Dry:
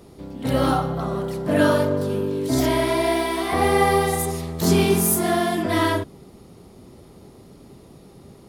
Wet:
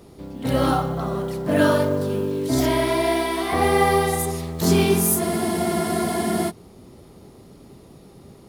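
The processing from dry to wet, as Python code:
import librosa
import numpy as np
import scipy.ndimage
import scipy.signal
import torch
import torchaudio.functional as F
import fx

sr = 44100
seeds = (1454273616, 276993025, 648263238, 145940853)

y = fx.mod_noise(x, sr, seeds[0], snr_db=31)
y = fx.spec_freeze(y, sr, seeds[1], at_s=5.23, hold_s=1.25)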